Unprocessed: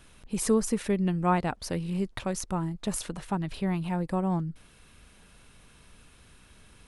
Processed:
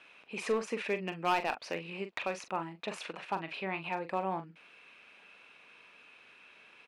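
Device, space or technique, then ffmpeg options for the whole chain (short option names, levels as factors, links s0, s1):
megaphone: -filter_complex "[0:a]highpass=470,lowpass=3300,equalizer=f=2500:t=o:w=0.33:g=11.5,asoftclip=type=hard:threshold=0.075,asplit=2[s0][s1];[s1]adelay=42,volume=0.316[s2];[s0][s2]amix=inputs=2:normalize=0"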